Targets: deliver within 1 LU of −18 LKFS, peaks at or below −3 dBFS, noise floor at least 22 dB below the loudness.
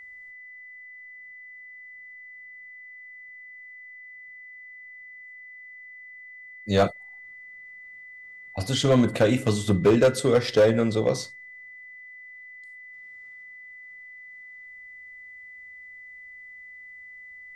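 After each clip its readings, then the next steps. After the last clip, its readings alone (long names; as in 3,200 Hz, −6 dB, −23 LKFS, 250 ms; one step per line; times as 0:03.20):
share of clipped samples 0.3%; peaks flattened at −12.5 dBFS; interfering tone 2,000 Hz; level of the tone −42 dBFS; integrated loudness −22.5 LKFS; sample peak −12.5 dBFS; target loudness −18.0 LKFS
→ clipped peaks rebuilt −12.5 dBFS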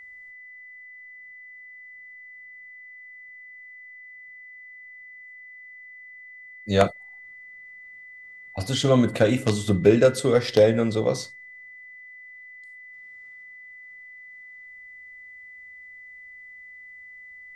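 share of clipped samples 0.0%; interfering tone 2,000 Hz; level of the tone −42 dBFS
→ notch filter 2,000 Hz, Q 30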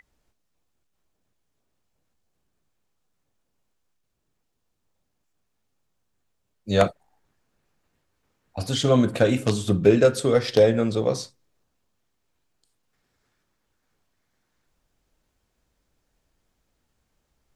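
interfering tone none found; integrated loudness −21.0 LKFS; sample peak −3.5 dBFS; target loudness −18.0 LKFS
→ level +3 dB
brickwall limiter −3 dBFS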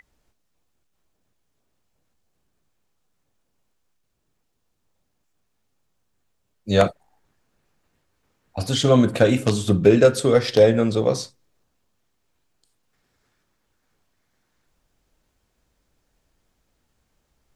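integrated loudness −18.5 LKFS; sample peak −3.0 dBFS; background noise floor −72 dBFS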